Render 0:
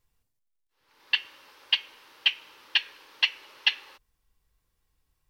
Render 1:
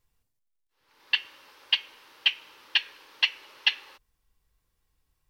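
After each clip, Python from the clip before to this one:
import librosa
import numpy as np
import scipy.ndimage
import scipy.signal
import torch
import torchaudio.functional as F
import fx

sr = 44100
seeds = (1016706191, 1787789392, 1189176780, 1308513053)

y = x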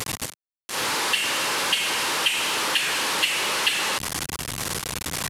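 y = fx.delta_mod(x, sr, bps=64000, step_db=-18.5)
y = scipy.signal.sosfilt(scipy.signal.butter(2, 130.0, 'highpass', fs=sr, output='sos'), y)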